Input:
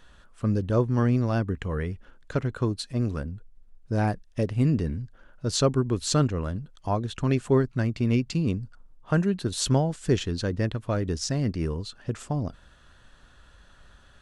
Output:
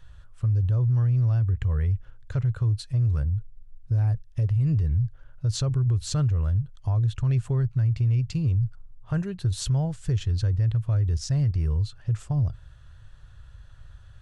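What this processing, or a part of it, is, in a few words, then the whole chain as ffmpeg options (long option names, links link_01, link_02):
car stereo with a boomy subwoofer: -af "lowshelf=frequency=160:width_type=q:width=3:gain=12,alimiter=limit=-12.5dB:level=0:latency=1:release=63,volume=-5dB"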